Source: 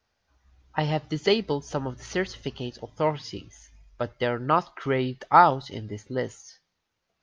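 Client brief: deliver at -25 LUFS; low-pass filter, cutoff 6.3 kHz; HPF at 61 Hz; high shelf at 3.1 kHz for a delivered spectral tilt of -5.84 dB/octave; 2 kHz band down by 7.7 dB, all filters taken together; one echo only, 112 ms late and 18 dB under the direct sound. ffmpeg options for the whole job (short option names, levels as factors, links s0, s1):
-af "highpass=61,lowpass=6300,equalizer=f=2000:t=o:g=-8,highshelf=f=3100:g=-7,aecho=1:1:112:0.126,volume=1.41"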